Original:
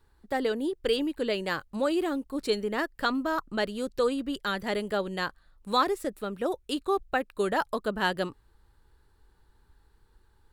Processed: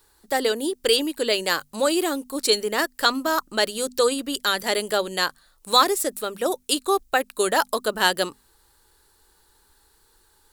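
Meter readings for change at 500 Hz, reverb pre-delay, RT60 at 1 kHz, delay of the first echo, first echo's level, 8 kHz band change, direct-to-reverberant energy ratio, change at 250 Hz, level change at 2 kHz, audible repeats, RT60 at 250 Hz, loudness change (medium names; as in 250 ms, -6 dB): +5.5 dB, no reverb, no reverb, no echo, no echo, +19.5 dB, no reverb, +2.0 dB, +7.0 dB, no echo, no reverb, +7.0 dB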